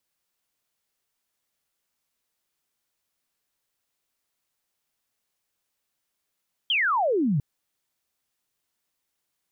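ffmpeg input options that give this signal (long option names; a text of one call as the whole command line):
ffmpeg -f lavfi -i "aevalsrc='0.1*clip(t/0.002,0,1)*clip((0.7-t)/0.002,0,1)*sin(2*PI*3300*0.7/log(130/3300)*(exp(log(130/3300)*t/0.7)-1))':duration=0.7:sample_rate=44100" out.wav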